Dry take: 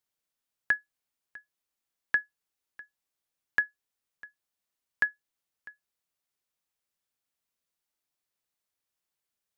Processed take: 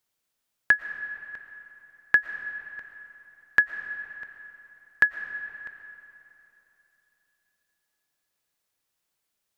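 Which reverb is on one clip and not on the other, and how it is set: digital reverb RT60 3.3 s, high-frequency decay 0.7×, pre-delay 75 ms, DRR 9.5 dB; gain +6.5 dB

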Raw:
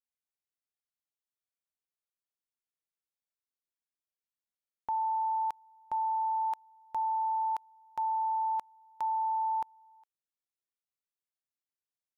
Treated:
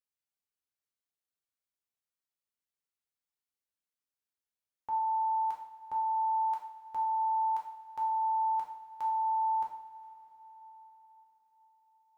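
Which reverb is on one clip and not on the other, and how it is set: two-slope reverb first 0.58 s, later 4.9 s, from -18 dB, DRR -2 dB; gain -5.5 dB

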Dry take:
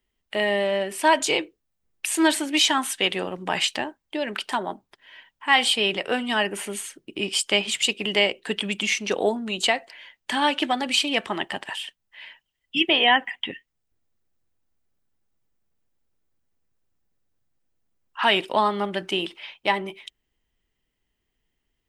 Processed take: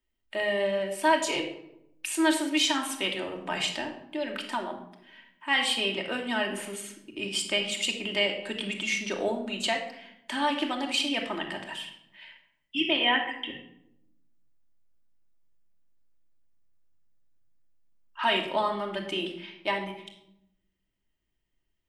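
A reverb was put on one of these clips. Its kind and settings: shoebox room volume 2200 m³, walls furnished, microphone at 2.7 m; gain -8 dB

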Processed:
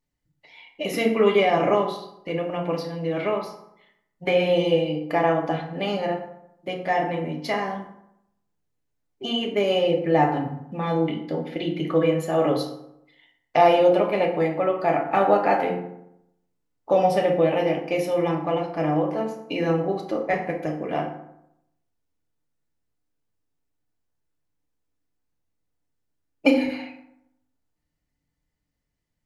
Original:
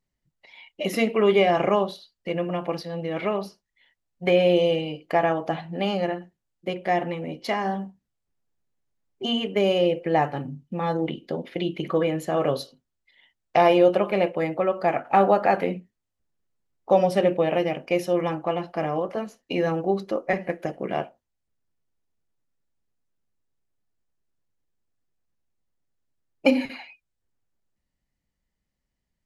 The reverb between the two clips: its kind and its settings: FDN reverb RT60 0.79 s, low-frequency decay 1.1×, high-frequency decay 0.55×, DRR 0.5 dB; gain -1.5 dB

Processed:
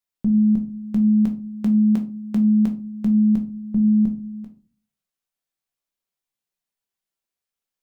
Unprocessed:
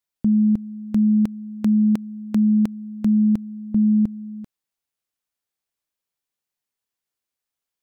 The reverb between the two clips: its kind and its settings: shoebox room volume 180 m³, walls furnished, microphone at 1.1 m; gain -3.5 dB

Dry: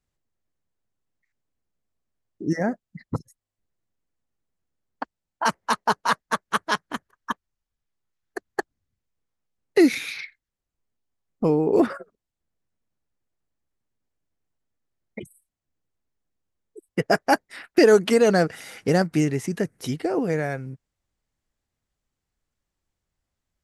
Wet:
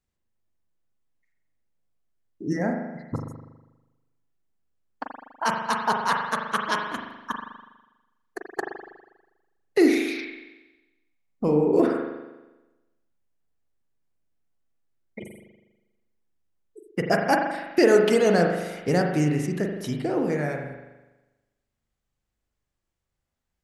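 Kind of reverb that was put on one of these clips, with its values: spring tank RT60 1.1 s, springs 40 ms, chirp 60 ms, DRR 2 dB; gain -3 dB

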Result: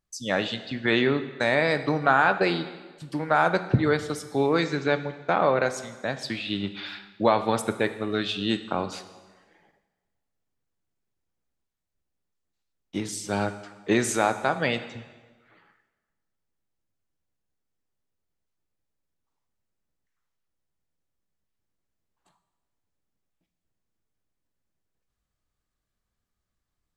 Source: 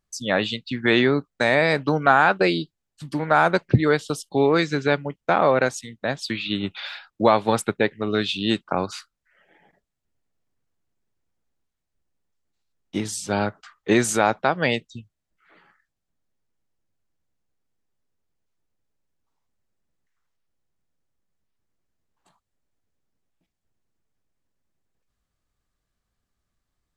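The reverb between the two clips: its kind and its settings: plate-style reverb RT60 1.3 s, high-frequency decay 0.9×, DRR 9.5 dB; gain -4 dB

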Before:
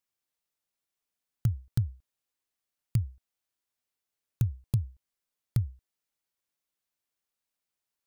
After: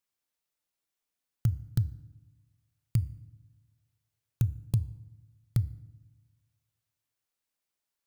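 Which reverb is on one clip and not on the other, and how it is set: FDN reverb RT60 1 s, low-frequency decay 1.45×, high-frequency decay 0.7×, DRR 16.5 dB

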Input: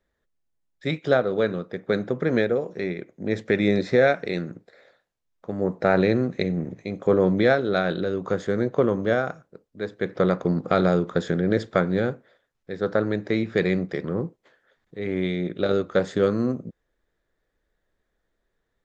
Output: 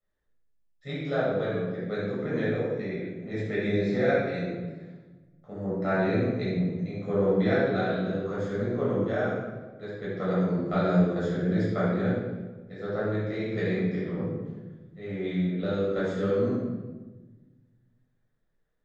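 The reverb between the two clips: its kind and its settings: shoebox room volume 800 m³, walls mixed, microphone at 6.6 m; gain -18.5 dB

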